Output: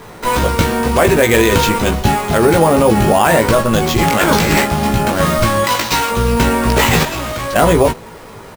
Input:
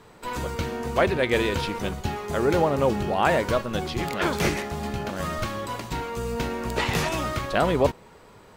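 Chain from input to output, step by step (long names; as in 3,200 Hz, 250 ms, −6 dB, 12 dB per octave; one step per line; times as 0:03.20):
0:04.22–0:04.65: compressor whose output falls as the input rises −27 dBFS, ratio −1
0:05.64–0:06.11: spectral tilt +3 dB per octave
sample-rate reduction 10,000 Hz, jitter 0%
0:07.03–0:07.56: tube saturation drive 35 dB, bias 0.75
double-tracking delay 18 ms −5 dB
boost into a limiter +15.5 dB
level −1 dB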